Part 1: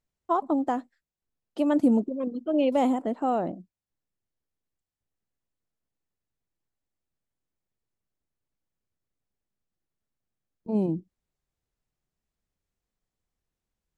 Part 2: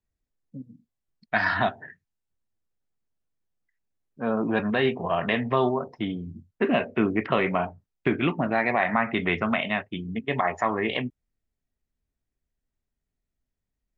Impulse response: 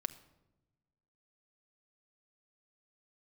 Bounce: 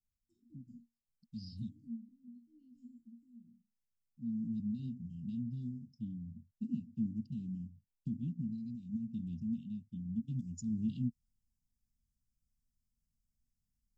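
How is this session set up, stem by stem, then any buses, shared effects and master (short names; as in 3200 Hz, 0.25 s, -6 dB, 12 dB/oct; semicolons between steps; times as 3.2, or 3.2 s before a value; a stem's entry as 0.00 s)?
-2.0 dB, 0.00 s, no send, treble ducked by the level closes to 3000 Hz, closed at -23 dBFS; resonator bank D#2 sus4, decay 0.28 s; auto duck -11 dB, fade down 1.95 s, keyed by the second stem
9.87 s -8 dB -> 10.58 s 0 dB, 0.00 s, no send, dry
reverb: off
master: Chebyshev band-stop 240–4900 Hz, order 5; bell 2800 Hz +15 dB 0.28 oct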